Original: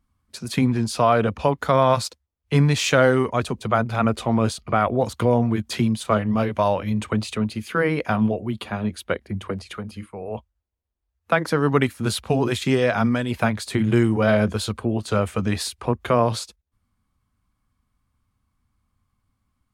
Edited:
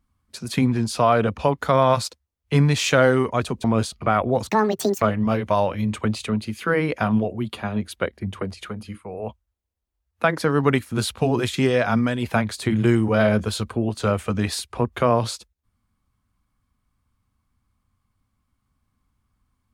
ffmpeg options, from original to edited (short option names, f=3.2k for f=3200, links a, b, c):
-filter_complex "[0:a]asplit=4[a][b][c][d];[a]atrim=end=3.642[e];[b]atrim=start=4.298:end=5.154[f];[c]atrim=start=5.15:end=6.1,asetpts=PTS-STARTPTS,asetrate=79380,aresample=44100[g];[d]atrim=start=6.096[h];[e][f]acrossfade=d=0.004:c1=hsin:c2=hsin[i];[i][g]acrossfade=d=0.004:c1=hsin:c2=hsin[j];[j][h]acrossfade=d=0.004:c1=hsin:c2=hsin"